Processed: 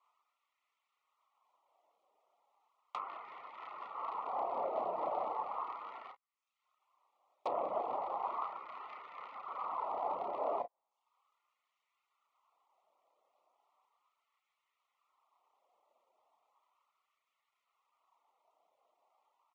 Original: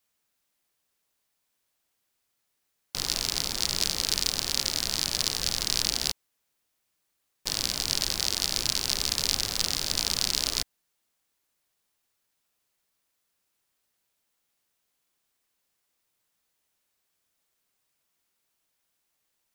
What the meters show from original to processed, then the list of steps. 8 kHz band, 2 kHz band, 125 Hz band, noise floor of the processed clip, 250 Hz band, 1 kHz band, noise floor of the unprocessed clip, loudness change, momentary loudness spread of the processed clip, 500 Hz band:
under -40 dB, -19.0 dB, under -25 dB, under -85 dBFS, -13.5 dB, +6.5 dB, -78 dBFS, -13.5 dB, 12 LU, +3.5 dB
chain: median filter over 9 samples; low-pass 5.2 kHz; resonant high shelf 1.6 kHz -7.5 dB, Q 1.5; early reflections 32 ms -4.5 dB, 49 ms -11.5 dB; low-pass that closes with the level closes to 1.5 kHz, closed at -38.5 dBFS; reverb removal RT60 0.66 s; Butterworth band-stop 1.6 kHz, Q 2; compression, threshold -41 dBFS, peak gain reduction 7.5 dB; LFO high-pass sine 0.36 Hz 610–1700 Hz; trim +8.5 dB

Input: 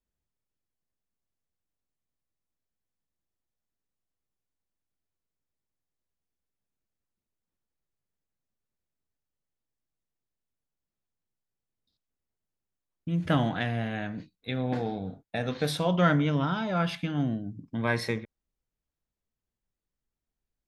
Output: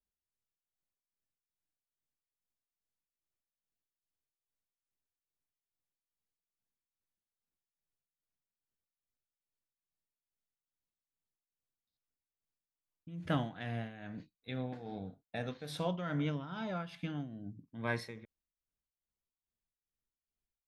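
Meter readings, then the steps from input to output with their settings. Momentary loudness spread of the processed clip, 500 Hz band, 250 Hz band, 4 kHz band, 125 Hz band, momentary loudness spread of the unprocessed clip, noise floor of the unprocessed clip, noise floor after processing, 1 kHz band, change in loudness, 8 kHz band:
13 LU, -10.5 dB, -11.0 dB, -11.0 dB, -10.5 dB, 12 LU, under -85 dBFS, under -85 dBFS, -11.5 dB, -11.0 dB, -12.0 dB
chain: tremolo 2.4 Hz, depth 71%; trim -7.5 dB

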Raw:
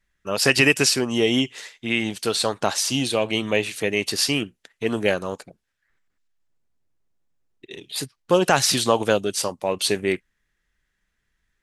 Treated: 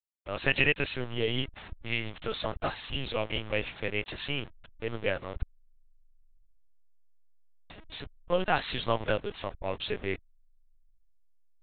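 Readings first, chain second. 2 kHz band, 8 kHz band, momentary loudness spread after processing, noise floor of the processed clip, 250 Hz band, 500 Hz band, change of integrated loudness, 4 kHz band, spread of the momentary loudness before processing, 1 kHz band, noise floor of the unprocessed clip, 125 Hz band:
-8.0 dB, under -40 dB, 13 LU, -61 dBFS, -13.5 dB, -10.0 dB, -10.5 dB, -11.5 dB, 13 LU, -8.5 dB, -75 dBFS, -6.0 dB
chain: send-on-delta sampling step -29.5 dBFS; bass shelf 370 Hz -7.5 dB; LPC vocoder at 8 kHz pitch kept; trim -6.5 dB

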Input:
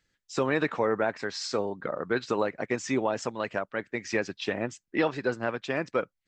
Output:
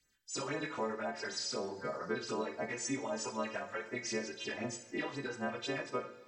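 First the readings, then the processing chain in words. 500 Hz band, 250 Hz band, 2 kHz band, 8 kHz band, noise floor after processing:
-10.5 dB, -9.0 dB, -8.5 dB, 0.0 dB, -57 dBFS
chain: partials quantised in pitch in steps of 2 st; compression, threshold -30 dBFS, peak gain reduction 10 dB; phase shifter stages 12, 3.9 Hz, lowest notch 190–4900 Hz; two-slope reverb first 0.51 s, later 3.4 s, from -19 dB, DRR 4.5 dB; trim -3.5 dB

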